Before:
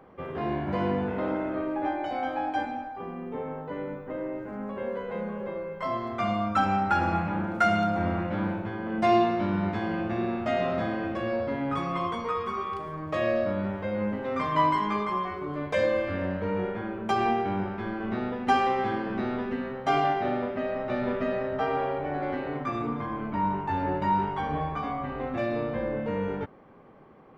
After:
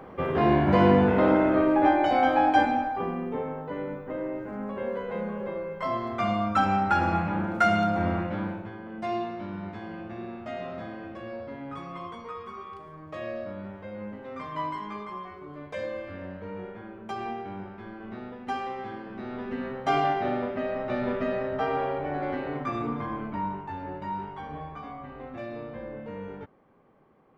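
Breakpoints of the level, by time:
0:02.94 +8.5 dB
0:03.54 +1 dB
0:08.15 +1 dB
0:08.94 −9 dB
0:19.16 −9 dB
0:19.65 0 dB
0:23.13 0 dB
0:23.78 −8.5 dB

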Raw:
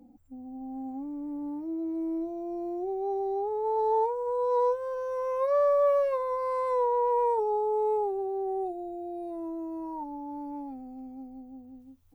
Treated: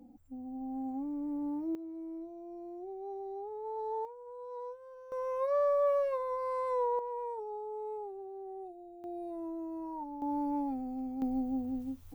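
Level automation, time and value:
−0.5 dB
from 0:01.75 −11 dB
from 0:04.05 −17.5 dB
from 0:05.12 −5 dB
from 0:06.99 −13 dB
from 0:09.04 −4 dB
from 0:10.22 +4.5 dB
from 0:11.22 +12 dB

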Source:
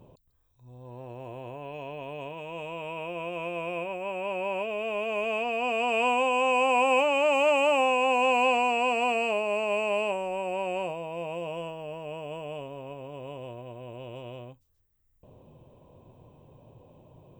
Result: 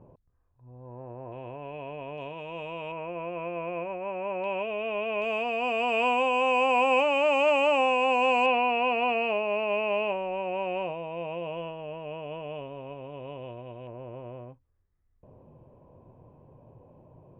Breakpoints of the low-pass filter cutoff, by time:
low-pass filter 24 dB per octave
1,800 Hz
from 0:01.32 2,900 Hz
from 0:02.18 5,200 Hz
from 0:02.92 2,300 Hz
from 0:04.44 3,600 Hz
from 0:05.22 6,400 Hz
from 0:08.46 3,500 Hz
from 0:13.87 2,000 Hz

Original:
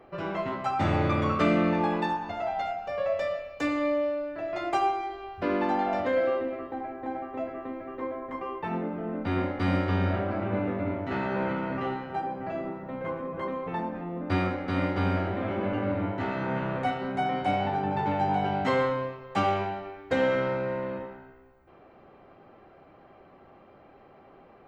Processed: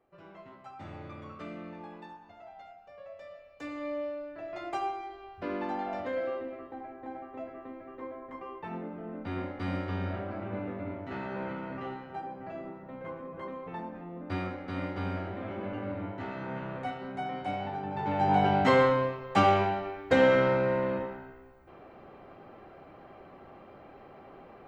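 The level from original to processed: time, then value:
0:03.18 −19 dB
0:04.00 −7.5 dB
0:17.91 −7.5 dB
0:18.37 +3 dB

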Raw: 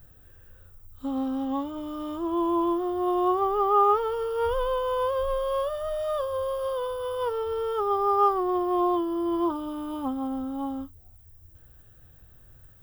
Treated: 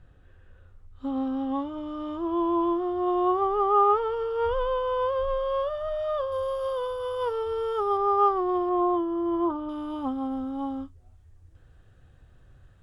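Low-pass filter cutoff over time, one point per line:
3,600 Hz
from 0:06.32 8,400 Hz
from 0:07.97 4,000 Hz
from 0:08.69 2,100 Hz
from 0:09.69 5,300 Hz

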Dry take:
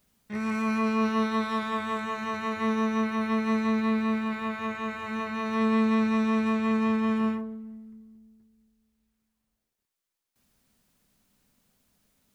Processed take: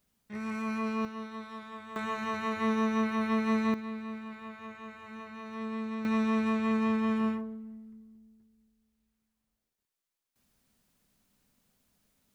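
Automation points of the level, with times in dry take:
−6.5 dB
from 0:01.05 −14.5 dB
from 0:01.96 −2 dB
from 0:03.74 −12.5 dB
from 0:06.05 −3 dB

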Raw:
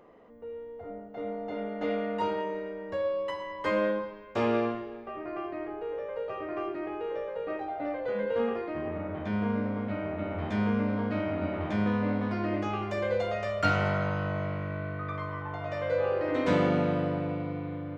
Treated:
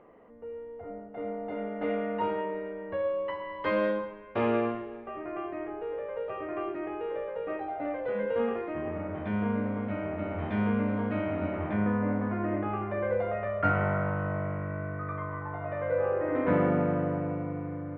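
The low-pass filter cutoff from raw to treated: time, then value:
low-pass filter 24 dB per octave
0:03.42 2,700 Hz
0:03.89 5,100 Hz
0:04.14 3,000 Hz
0:11.44 3,000 Hz
0:11.94 2,000 Hz

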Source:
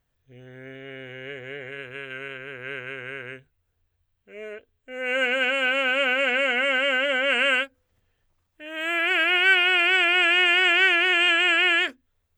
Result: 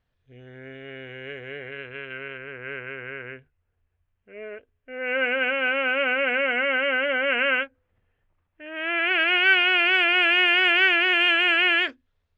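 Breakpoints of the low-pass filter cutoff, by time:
low-pass filter 24 dB per octave
0:01.37 5,000 Hz
0:02.54 2,700 Hz
0:08.73 2,700 Hz
0:09.31 5,200 Hz

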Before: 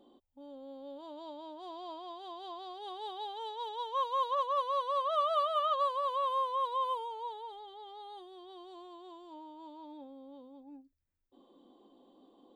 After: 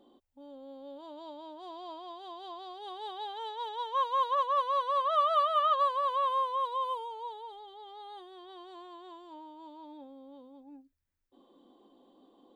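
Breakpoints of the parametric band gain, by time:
parametric band 1,700 Hz 1 octave
0:02.83 +2.5 dB
0:03.31 +9 dB
0:06.25 +9 dB
0:06.83 0 dB
0:07.74 0 dB
0:08.29 +12 dB
0:09.07 +12 dB
0:09.59 +3.5 dB

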